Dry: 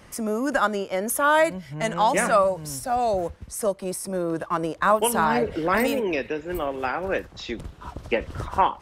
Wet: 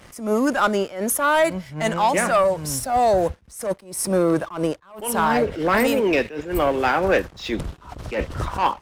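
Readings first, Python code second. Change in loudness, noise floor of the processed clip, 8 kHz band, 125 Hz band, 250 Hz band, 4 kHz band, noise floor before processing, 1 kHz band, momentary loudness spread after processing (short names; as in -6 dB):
+2.5 dB, -49 dBFS, +3.0 dB, +4.5 dB, +4.5 dB, +3.0 dB, -47 dBFS, +1.5 dB, 10 LU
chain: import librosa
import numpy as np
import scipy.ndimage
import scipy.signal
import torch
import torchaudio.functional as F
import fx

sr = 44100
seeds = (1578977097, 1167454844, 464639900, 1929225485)

y = fx.rider(x, sr, range_db=4, speed_s=0.5)
y = fx.leveller(y, sr, passes=2)
y = fx.attack_slew(y, sr, db_per_s=130.0)
y = F.gain(torch.from_numpy(y), -2.0).numpy()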